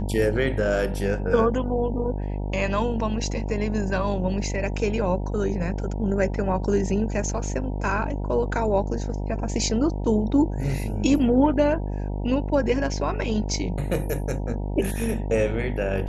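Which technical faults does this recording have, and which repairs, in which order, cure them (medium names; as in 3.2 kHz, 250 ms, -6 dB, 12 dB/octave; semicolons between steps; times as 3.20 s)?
buzz 50 Hz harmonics 19 -28 dBFS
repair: de-hum 50 Hz, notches 19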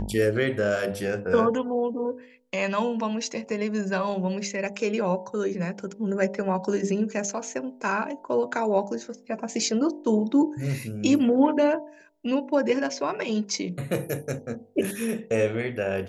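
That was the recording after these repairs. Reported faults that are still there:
nothing left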